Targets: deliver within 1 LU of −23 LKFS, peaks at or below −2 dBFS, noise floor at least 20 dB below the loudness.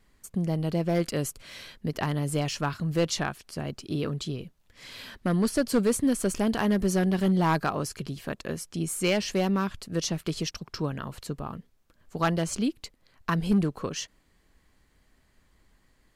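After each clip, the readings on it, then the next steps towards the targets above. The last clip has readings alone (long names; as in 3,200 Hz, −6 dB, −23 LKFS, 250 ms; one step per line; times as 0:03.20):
share of clipped samples 0.6%; peaks flattened at −17.0 dBFS; integrated loudness −28.5 LKFS; sample peak −17.0 dBFS; target loudness −23.0 LKFS
→ clipped peaks rebuilt −17 dBFS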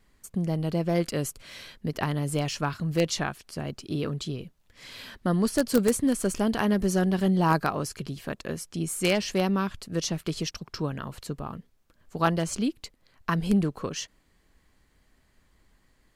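share of clipped samples 0.0%; integrated loudness −28.0 LKFS; sample peak −8.0 dBFS; target loudness −23.0 LKFS
→ level +5 dB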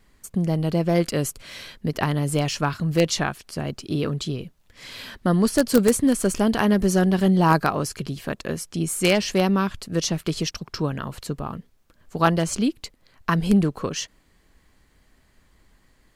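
integrated loudness −23.0 LKFS; sample peak −3.0 dBFS; background noise floor −61 dBFS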